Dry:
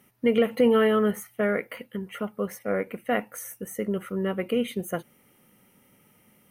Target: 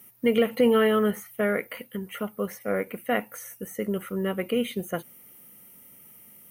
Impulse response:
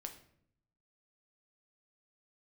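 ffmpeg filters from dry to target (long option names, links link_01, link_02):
-filter_complex "[0:a]aemphasis=mode=production:type=50fm,acrossover=split=5200[link_01][link_02];[link_02]acompressor=threshold=-43dB:ratio=4:attack=1:release=60[link_03];[link_01][link_03]amix=inputs=2:normalize=0"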